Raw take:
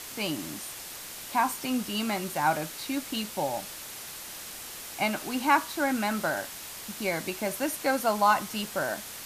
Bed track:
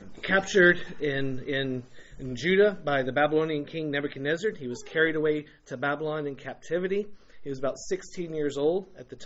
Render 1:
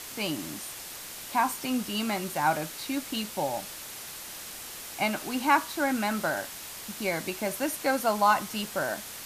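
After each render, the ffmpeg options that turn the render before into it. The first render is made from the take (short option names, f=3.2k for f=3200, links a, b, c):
-af anull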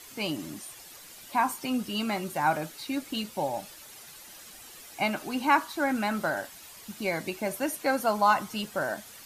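-af "afftdn=nr=10:nf=-42"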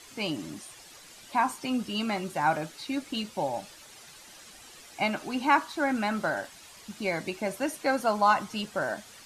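-af "lowpass=8.7k"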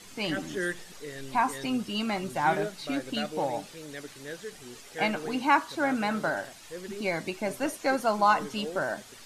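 -filter_complex "[1:a]volume=-12.5dB[a];[0:a][a]amix=inputs=2:normalize=0"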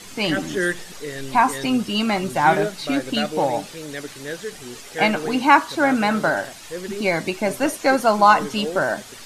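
-af "volume=9dB"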